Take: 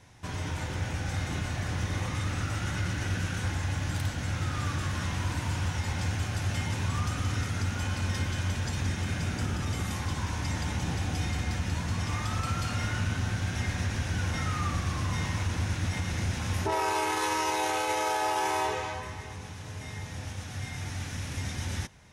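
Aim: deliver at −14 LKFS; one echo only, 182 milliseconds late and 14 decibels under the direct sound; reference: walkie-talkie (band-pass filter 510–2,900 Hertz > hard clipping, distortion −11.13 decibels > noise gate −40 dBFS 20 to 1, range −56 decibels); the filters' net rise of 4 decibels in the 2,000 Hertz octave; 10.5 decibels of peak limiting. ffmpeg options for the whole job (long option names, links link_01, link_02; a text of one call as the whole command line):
ffmpeg -i in.wav -af "equalizer=frequency=2000:width_type=o:gain=6,alimiter=level_in=2dB:limit=-24dB:level=0:latency=1,volume=-2dB,highpass=510,lowpass=2900,aecho=1:1:182:0.2,asoftclip=type=hard:threshold=-37dB,agate=range=-56dB:threshold=-40dB:ratio=20,volume=27.5dB" out.wav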